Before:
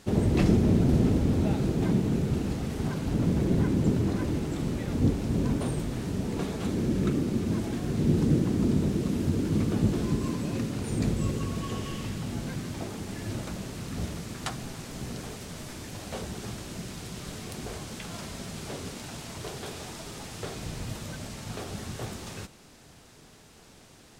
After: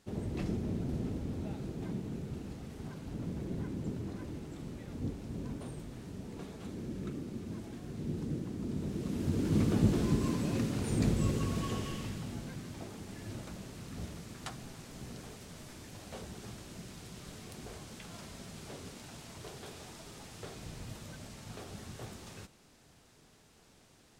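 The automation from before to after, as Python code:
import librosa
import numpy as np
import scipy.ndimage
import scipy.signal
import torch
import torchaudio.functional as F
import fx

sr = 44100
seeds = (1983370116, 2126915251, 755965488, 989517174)

y = fx.gain(x, sr, db=fx.line((8.63, -13.5), (9.59, -2.0), (11.65, -2.0), (12.51, -9.0)))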